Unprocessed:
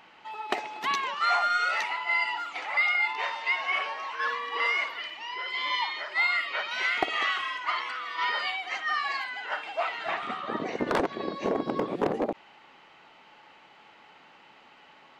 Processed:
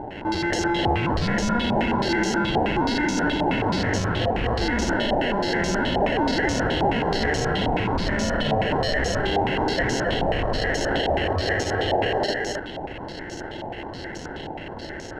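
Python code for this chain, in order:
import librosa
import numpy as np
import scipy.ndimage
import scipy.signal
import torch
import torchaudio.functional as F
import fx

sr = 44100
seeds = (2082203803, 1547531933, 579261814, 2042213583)

p1 = scipy.signal.sosfilt(scipy.signal.butter(4, 400.0, 'highpass', fs=sr, output='sos'), x)
p2 = fx.over_compress(p1, sr, threshold_db=-39.0, ratio=-1.0)
p3 = p1 + F.gain(torch.from_numpy(p2), 2.0).numpy()
p4 = fx.sample_hold(p3, sr, seeds[0], rate_hz=1200.0, jitter_pct=0)
p5 = 10.0 ** (-28.5 / 20.0) * np.tanh(p4 / 10.0 ** (-28.5 / 20.0))
p6 = p5 + fx.echo_single(p5, sr, ms=266, db=-3.0, dry=0)
p7 = fx.filter_held_lowpass(p6, sr, hz=9.4, low_hz=800.0, high_hz=6100.0)
y = F.gain(torch.from_numpy(p7), 6.0).numpy()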